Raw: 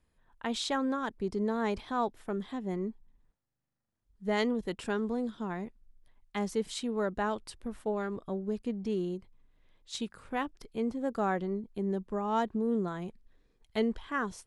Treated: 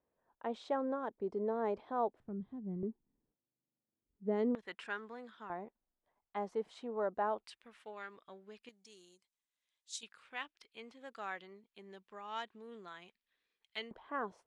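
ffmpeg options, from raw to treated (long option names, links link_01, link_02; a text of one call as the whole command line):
ffmpeg -i in.wav -af "asetnsamples=nb_out_samples=441:pad=0,asendcmd='2.2 bandpass f 120;2.83 bandpass f 330;4.55 bandpass f 1800;5.5 bandpass f 730;7.44 bandpass f 2500;8.69 bandpass f 7300;10.03 bandpass f 2800;13.91 bandpass f 660',bandpass=frequency=570:width_type=q:width=1.4:csg=0" out.wav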